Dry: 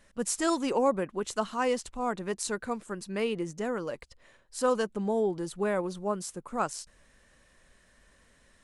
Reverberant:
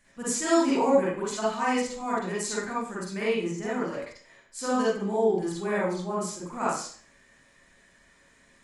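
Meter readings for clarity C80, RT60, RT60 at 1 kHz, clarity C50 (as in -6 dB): 5.5 dB, 0.45 s, 0.45 s, -2.0 dB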